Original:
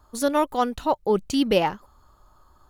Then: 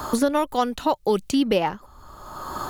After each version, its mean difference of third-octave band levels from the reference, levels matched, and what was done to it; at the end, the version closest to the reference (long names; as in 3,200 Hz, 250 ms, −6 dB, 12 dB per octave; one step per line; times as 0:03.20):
3.5 dB: multiband upward and downward compressor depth 100%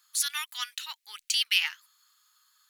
17.5 dB: inverse Chebyshev high-pass filter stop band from 590 Hz, stop band 60 dB
level +6.5 dB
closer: first